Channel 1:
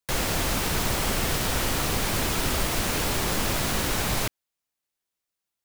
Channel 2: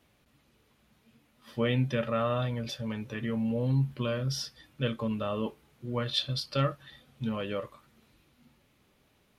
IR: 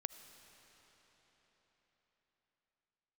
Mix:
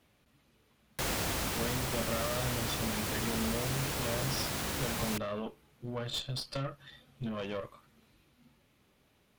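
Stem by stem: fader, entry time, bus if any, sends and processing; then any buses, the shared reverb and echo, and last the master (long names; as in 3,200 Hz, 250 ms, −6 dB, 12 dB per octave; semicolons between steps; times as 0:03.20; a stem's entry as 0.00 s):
−2.0 dB, 0.90 s, no send, high-pass filter 46 Hz; automatic ducking −7 dB, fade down 1.80 s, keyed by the second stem
+2.5 dB, 0.00 s, no send, downward compressor 6 to 1, threshold −30 dBFS, peak gain reduction 8 dB; tube saturation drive 32 dB, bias 0.7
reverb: not used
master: no processing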